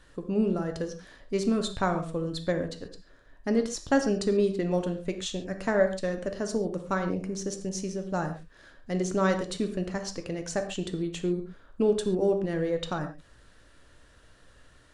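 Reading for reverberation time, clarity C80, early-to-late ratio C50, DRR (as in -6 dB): no single decay rate, 12.5 dB, 9.0 dB, 5.5 dB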